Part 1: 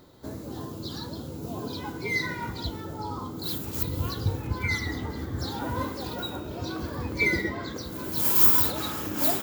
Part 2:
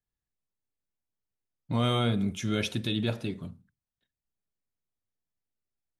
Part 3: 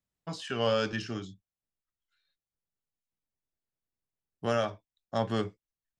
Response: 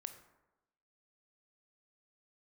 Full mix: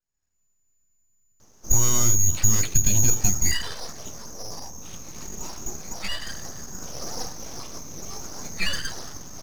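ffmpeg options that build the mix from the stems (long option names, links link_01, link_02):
-filter_complex "[0:a]lowshelf=frequency=140:gain=-10.5,adelay=1400,volume=2.5dB[link_01];[1:a]acompressor=threshold=-34dB:ratio=4,asubboost=boost=6:cutoff=220,dynaudnorm=framelen=120:gausssize=3:maxgain=9.5dB,volume=3dB[link_02];[link_01][link_02]amix=inputs=2:normalize=0,lowpass=frequency=3000:width_type=q:width=0.5098,lowpass=frequency=3000:width_type=q:width=0.6013,lowpass=frequency=3000:width_type=q:width=0.9,lowpass=frequency=3000:width_type=q:width=2.563,afreqshift=-3500,aeval=exprs='abs(val(0))':channel_layout=same"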